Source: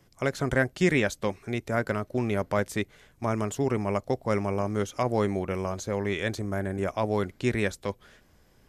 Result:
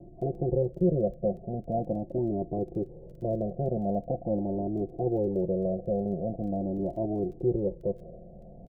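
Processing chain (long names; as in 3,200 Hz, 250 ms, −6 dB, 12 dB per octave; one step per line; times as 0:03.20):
compressor on every frequency bin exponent 0.6
Butterworth low-pass 720 Hz 72 dB per octave
comb filter 5.8 ms, depth 63%
surface crackle 12 per second −45 dBFS
flanger whose copies keep moving one way rising 0.43 Hz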